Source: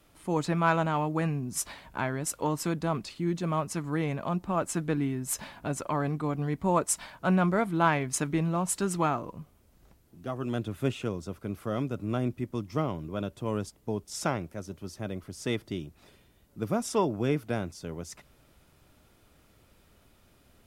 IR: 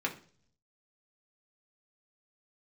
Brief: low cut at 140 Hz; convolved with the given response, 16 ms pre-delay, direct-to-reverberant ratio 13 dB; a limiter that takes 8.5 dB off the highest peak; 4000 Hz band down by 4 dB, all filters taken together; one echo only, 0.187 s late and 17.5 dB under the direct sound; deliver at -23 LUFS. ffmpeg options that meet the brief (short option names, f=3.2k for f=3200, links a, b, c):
-filter_complex "[0:a]highpass=140,equalizer=f=4k:t=o:g=-5.5,alimiter=limit=-19dB:level=0:latency=1,aecho=1:1:187:0.133,asplit=2[a][b];[1:a]atrim=start_sample=2205,adelay=16[c];[b][c]afir=irnorm=-1:irlink=0,volume=-19dB[d];[a][d]amix=inputs=2:normalize=0,volume=9.5dB"